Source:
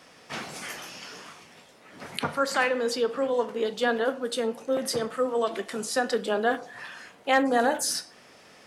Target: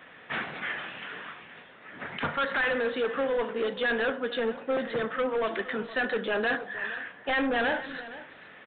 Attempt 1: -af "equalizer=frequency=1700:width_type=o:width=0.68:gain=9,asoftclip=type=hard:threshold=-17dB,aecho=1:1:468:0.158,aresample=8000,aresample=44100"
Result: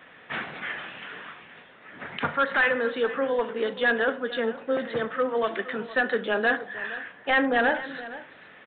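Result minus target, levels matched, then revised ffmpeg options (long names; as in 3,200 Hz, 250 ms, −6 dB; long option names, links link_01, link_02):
hard clipping: distortion −6 dB
-af "equalizer=frequency=1700:width_type=o:width=0.68:gain=9,asoftclip=type=hard:threshold=-24dB,aecho=1:1:468:0.158,aresample=8000,aresample=44100"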